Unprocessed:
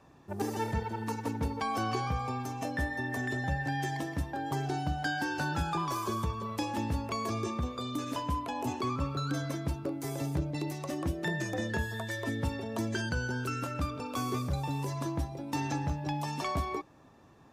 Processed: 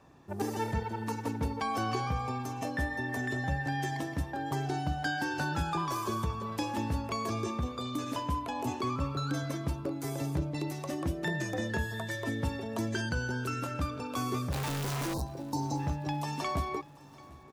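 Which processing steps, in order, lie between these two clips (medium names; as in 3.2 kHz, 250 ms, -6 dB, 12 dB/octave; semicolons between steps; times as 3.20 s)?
14.52–15.22 s: one-bit comparator; 15.13–15.80 s: spectral selection erased 1.1–3.7 kHz; on a send: feedback delay 738 ms, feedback 56%, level -21.5 dB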